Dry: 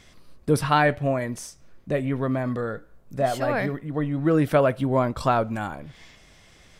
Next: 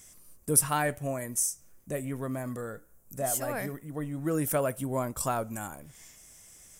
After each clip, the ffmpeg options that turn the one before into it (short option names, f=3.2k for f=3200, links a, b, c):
-af "aexciter=amount=15.2:drive=3.5:freq=6.2k,volume=-9dB"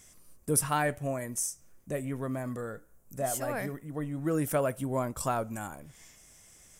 -af "highshelf=f=7.9k:g=-7.5"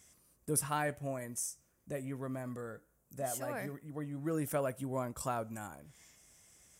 -af "highpass=43,volume=-6dB"